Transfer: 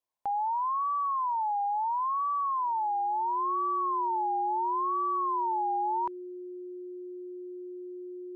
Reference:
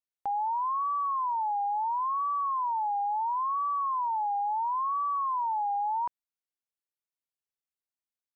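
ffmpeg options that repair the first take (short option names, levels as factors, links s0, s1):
-af "bandreject=f=360:w=30,agate=range=0.0891:threshold=0.0224"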